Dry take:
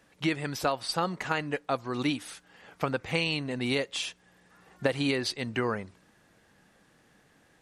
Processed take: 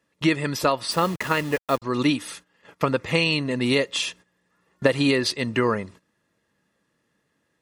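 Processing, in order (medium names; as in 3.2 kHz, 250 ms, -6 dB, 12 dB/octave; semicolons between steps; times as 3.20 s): 0.91–1.82 s: send-on-delta sampling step -38.5 dBFS; comb of notches 760 Hz; gate -52 dBFS, range -16 dB; trim +8 dB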